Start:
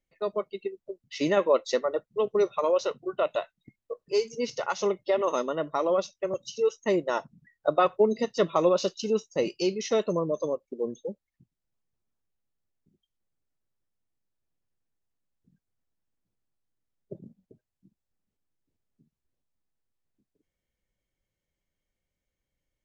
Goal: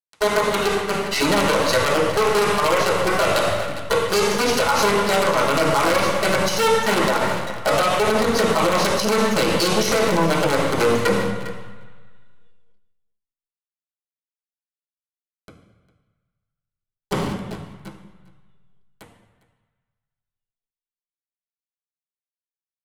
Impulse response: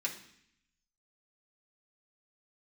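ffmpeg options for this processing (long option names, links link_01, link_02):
-filter_complex "[0:a]lowshelf=frequency=240:gain=4.5,bandreject=frequency=3300:width=6.3,bandreject=frequency=53.65:width_type=h:width=4,bandreject=frequency=107.3:width_type=h:width=4,bandreject=frequency=160.95:width_type=h:width=4,bandreject=frequency=214.6:width_type=h:width=4,bandreject=frequency=268.25:width_type=h:width=4,bandreject=frequency=321.9:width_type=h:width=4,bandreject=frequency=375.55:width_type=h:width=4,bandreject=frequency=429.2:width_type=h:width=4,bandreject=frequency=482.85:width_type=h:width=4,bandreject=frequency=536.5:width_type=h:width=4,bandreject=frequency=590.15:width_type=h:width=4,bandreject=frequency=643.8:width_type=h:width=4,bandreject=frequency=697.45:width_type=h:width=4,bandreject=frequency=751.1:width_type=h:width=4,bandreject=frequency=804.75:width_type=h:width=4,bandreject=frequency=858.4:width_type=h:width=4,bandreject=frequency=912.05:width_type=h:width=4,bandreject=frequency=965.7:width_type=h:width=4,bandreject=frequency=1019.35:width_type=h:width=4,bandreject=frequency=1073:width_type=h:width=4,bandreject=frequency=1126.65:width_type=h:width=4,bandreject=frequency=1180.3:width_type=h:width=4,bandreject=frequency=1233.95:width_type=h:width=4,bandreject=frequency=1287.6:width_type=h:width=4,bandreject=frequency=1341.25:width_type=h:width=4,bandreject=frequency=1394.9:width_type=h:width=4,bandreject=frequency=1448.55:width_type=h:width=4,bandreject=frequency=1502.2:width_type=h:width=4,acompressor=threshold=-32dB:ratio=8,acrusher=bits=6:dc=4:mix=0:aa=0.000001,aecho=1:1:404:0.0891[link_01];[1:a]atrim=start_sample=2205,asetrate=24255,aresample=44100[link_02];[link_01][link_02]afir=irnorm=-1:irlink=0,alimiter=level_in=26dB:limit=-1dB:release=50:level=0:latency=1,volume=-7.5dB"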